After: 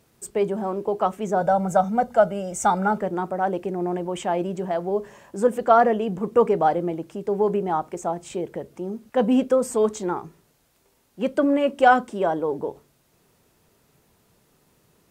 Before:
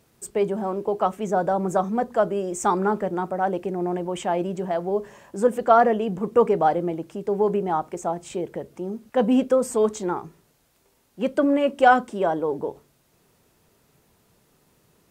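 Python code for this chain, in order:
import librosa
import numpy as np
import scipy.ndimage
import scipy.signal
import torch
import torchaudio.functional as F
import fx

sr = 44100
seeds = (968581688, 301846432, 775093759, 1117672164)

y = fx.comb(x, sr, ms=1.4, depth=0.73, at=(1.41, 2.98))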